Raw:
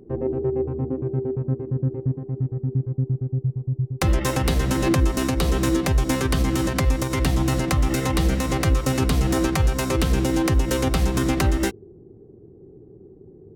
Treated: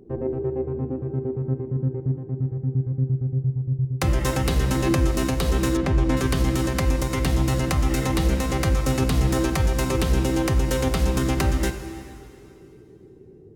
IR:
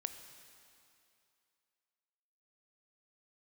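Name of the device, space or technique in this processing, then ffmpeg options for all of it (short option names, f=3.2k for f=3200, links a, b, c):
stairwell: -filter_complex "[1:a]atrim=start_sample=2205[a];[0:a][a]afir=irnorm=-1:irlink=0,asettb=1/sr,asplit=3[b][c][d];[b]atrim=end=5.774[e];[c]atrim=start=5.77:end=6.17,asetpts=PTS-STARTPTS,afade=t=in:d=0.004:c=qsin,afade=t=out:st=0.396:d=0.004:c=qsin,aemphasis=mode=reproduction:type=75fm[f];[d]atrim=start=6.166[g];[e][f]acrossfade=d=0.004:c1=hsin:c2=qsin[h];[h][g]acrossfade=d=0.004:c1=qsin:c2=hsin"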